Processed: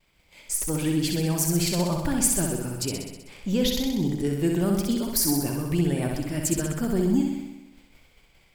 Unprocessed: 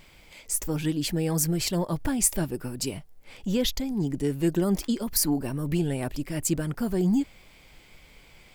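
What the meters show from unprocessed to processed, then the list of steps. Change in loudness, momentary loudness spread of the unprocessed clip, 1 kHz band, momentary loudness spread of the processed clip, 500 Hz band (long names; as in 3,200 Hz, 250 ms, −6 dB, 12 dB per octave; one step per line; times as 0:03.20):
+2.0 dB, 8 LU, +2.5 dB, 7 LU, +2.0 dB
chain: downward expander −44 dBFS
flutter between parallel walls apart 10.9 metres, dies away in 1 s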